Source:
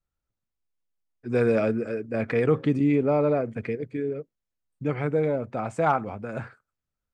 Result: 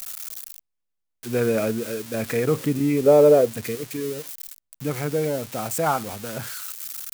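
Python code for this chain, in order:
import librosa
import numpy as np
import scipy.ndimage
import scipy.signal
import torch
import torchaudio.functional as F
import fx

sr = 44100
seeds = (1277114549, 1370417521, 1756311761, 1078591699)

y = x + 0.5 * 10.0 ** (-22.0 / 20.0) * np.diff(np.sign(x), prepend=np.sign(x[:1]))
y = fx.peak_eq(y, sr, hz=490.0, db=12.5, octaves=0.92, at=(3.06, 3.48))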